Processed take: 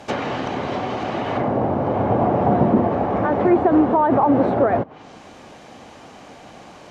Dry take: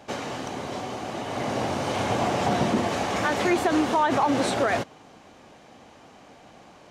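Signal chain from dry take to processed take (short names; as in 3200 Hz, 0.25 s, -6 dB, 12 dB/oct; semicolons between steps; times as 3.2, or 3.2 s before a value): treble ducked by the level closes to 870 Hz, closed at -24 dBFS; gain +8 dB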